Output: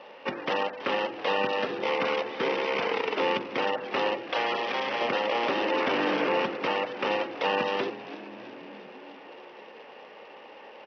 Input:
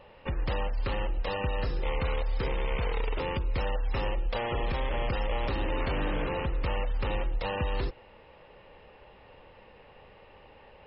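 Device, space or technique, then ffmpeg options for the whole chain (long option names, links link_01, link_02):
Bluetooth headset: -filter_complex "[0:a]asettb=1/sr,asplit=3[link_01][link_02][link_03];[link_01]atrim=end=4.294[link_04];[link_02]atrim=start=4.29:end=5.01,asetpts=PTS-STARTPTS,afade=type=in:duration=0.004:curve=qsin,afade=type=out:start_time=0.716:duration=0.004:curve=qsin,highpass=frequency=650:poles=1[link_05];[link_03]atrim=start=5.006[link_06];[link_04][link_05]acrossfade=duration=0.004:curve1=hsin:curve2=qsin[link_07];[link_07][link_06]acrossfade=duration=0.004:curve1=qsin:curve2=hsin,bandreject=frequency=45.3:width_type=h:width=4,bandreject=frequency=90.6:width_type=h:width=4,bandreject=frequency=135.9:width_type=h:width=4,bandreject=frequency=181.2:width_type=h:width=4,bandreject=frequency=226.5:width_type=h:width=4,bandreject=frequency=271.8:width_type=h:width=4,bandreject=frequency=317.1:width_type=h:width=4,bandreject=frequency=362.4:width_type=h:width=4,bandreject=frequency=407.7:width_type=h:width=4,bandreject=frequency=453:width_type=h:width=4,bandreject=frequency=498.3:width_type=h:width=4,bandreject=frequency=543.6:width_type=h:width=4,bandreject=frequency=588.9:width_type=h:width=4,asplit=7[link_08][link_09][link_10][link_11][link_12][link_13][link_14];[link_09]adelay=329,afreqshift=-81,volume=-16dB[link_15];[link_10]adelay=658,afreqshift=-162,volume=-20.2dB[link_16];[link_11]adelay=987,afreqshift=-243,volume=-24.3dB[link_17];[link_12]adelay=1316,afreqshift=-324,volume=-28.5dB[link_18];[link_13]adelay=1645,afreqshift=-405,volume=-32.6dB[link_19];[link_14]adelay=1974,afreqshift=-486,volume=-36.8dB[link_20];[link_08][link_15][link_16][link_17][link_18][link_19][link_20]amix=inputs=7:normalize=0,highpass=frequency=240:width=0.5412,highpass=frequency=240:width=1.3066,aresample=8000,aresample=44100,volume=7.5dB" -ar 44100 -c:a sbc -b:a 64k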